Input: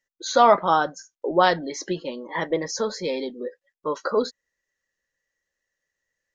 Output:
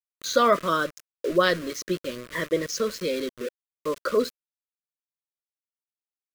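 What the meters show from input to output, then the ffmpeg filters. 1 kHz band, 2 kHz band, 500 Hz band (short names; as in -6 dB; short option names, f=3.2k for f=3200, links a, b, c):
-6.5 dB, 0.0 dB, -1.5 dB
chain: -af "aeval=exprs='val(0)*gte(abs(val(0)),0.0224)':c=same,asuperstop=centerf=820:order=4:qfactor=1.7"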